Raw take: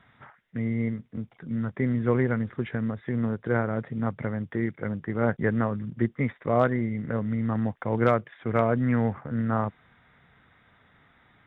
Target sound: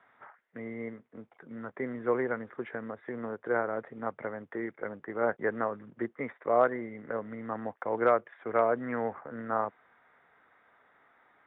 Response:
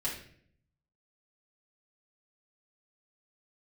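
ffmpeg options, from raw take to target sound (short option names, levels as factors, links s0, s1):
-filter_complex "[0:a]acrossover=split=340 2000:gain=0.0708 1 0.158[s0][s1][s2];[s0][s1][s2]amix=inputs=3:normalize=0"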